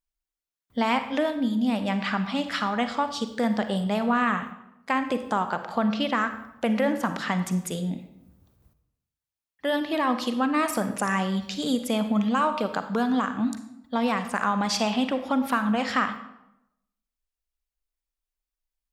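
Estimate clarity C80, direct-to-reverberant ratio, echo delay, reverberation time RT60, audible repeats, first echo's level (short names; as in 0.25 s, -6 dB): 12.0 dB, 8.5 dB, none, 0.85 s, none, none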